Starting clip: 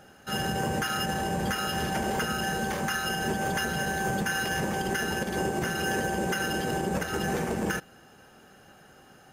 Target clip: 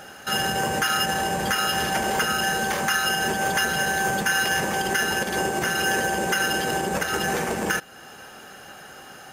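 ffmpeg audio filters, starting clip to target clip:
-filter_complex "[0:a]asplit=2[a][b];[b]acompressor=threshold=-43dB:ratio=6,volume=2dB[c];[a][c]amix=inputs=2:normalize=0,lowshelf=f=430:g=-10.5,acontrast=69"

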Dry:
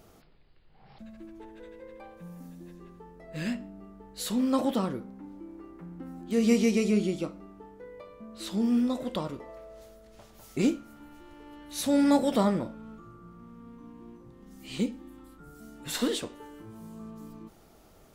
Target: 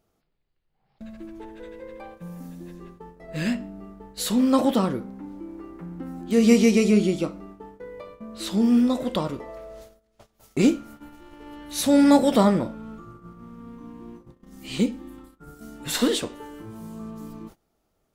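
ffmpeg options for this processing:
-af "agate=range=-22dB:threshold=-49dB:ratio=16:detection=peak,volume=6.5dB"

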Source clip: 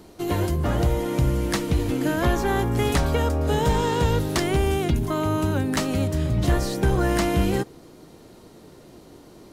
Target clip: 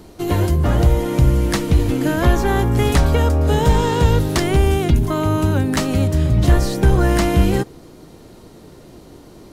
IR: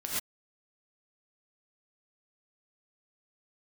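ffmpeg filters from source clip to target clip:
-af "lowshelf=f=110:g=6.5,volume=4dB"

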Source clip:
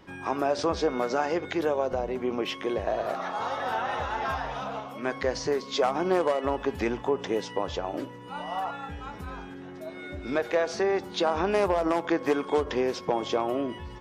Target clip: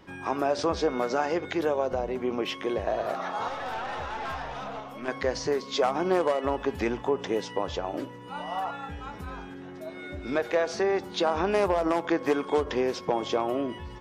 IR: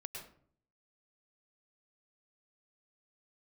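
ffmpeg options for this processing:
-filter_complex "[0:a]asettb=1/sr,asplit=3[a][b][c];[a]atrim=end=3.484[d];[b]atrim=start=3.48:end=5.08,asetpts=PTS-STARTPTS,afade=t=in:d=0.004:c=qsin,afade=t=out:st=1.596:d=0.004:c=qsin,aeval=exprs='(tanh(28.2*val(0)+0.4)-tanh(0.4))/28.2':c=same[e];[c]atrim=start=5.076[f];[d][e]acrossfade=d=0.004:c1=hsin:c2=qsin[g];[g][f]acrossfade=d=0.004:c1=qsin:c2=hsin"

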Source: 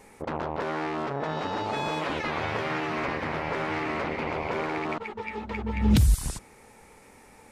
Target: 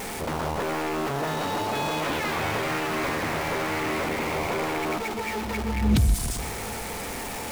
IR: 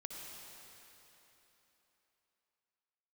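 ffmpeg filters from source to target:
-filter_complex "[0:a]aeval=exprs='val(0)+0.5*0.0473*sgn(val(0))':c=same,asplit=2[a][b];[1:a]atrim=start_sample=2205,adelay=126[c];[b][c]afir=irnorm=-1:irlink=0,volume=-9.5dB[d];[a][d]amix=inputs=2:normalize=0,aeval=exprs='val(0)+0.00631*sin(2*PI*700*n/s)':c=same,volume=-2dB"

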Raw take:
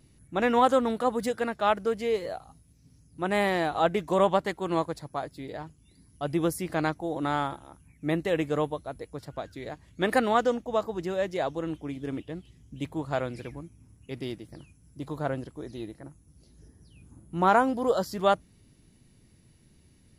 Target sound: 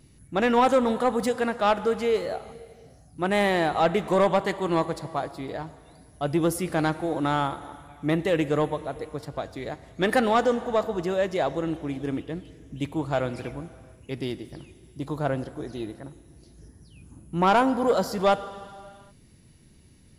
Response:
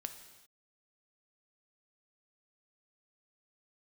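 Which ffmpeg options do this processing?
-filter_complex "[0:a]asplit=2[a][b];[1:a]atrim=start_sample=2205,asetrate=22932,aresample=44100[c];[b][c]afir=irnorm=-1:irlink=0,volume=-7dB[d];[a][d]amix=inputs=2:normalize=0,asoftclip=type=tanh:threshold=-13.5dB,volume=1dB"

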